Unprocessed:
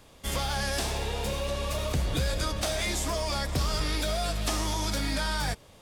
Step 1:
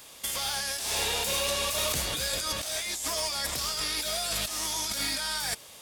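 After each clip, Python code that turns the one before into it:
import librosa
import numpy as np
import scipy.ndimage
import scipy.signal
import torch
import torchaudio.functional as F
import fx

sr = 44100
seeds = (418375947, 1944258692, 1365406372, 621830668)

y = fx.tilt_eq(x, sr, slope=3.5)
y = fx.over_compress(y, sr, threshold_db=-31.0, ratio=-1.0)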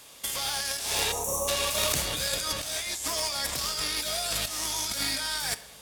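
y = fx.cheby_harmonics(x, sr, harmonics=(3,), levels_db=(-13,), full_scale_db=-14.5)
y = fx.spec_box(y, sr, start_s=1.12, length_s=0.36, low_hz=1300.0, high_hz=5500.0, gain_db=-27)
y = fx.room_shoebox(y, sr, seeds[0], volume_m3=590.0, walls='mixed', distance_m=0.31)
y = y * librosa.db_to_amplitude(8.5)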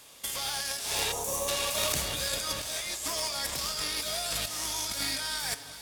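y = fx.echo_alternate(x, sr, ms=180, hz=960.0, feedback_pct=82, wet_db=-13.5)
y = y * librosa.db_to_amplitude(-2.5)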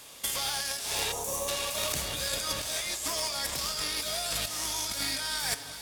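y = fx.rider(x, sr, range_db=10, speed_s=0.5)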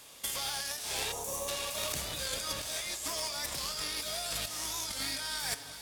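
y = fx.record_warp(x, sr, rpm=45.0, depth_cents=100.0)
y = y * librosa.db_to_amplitude(-4.0)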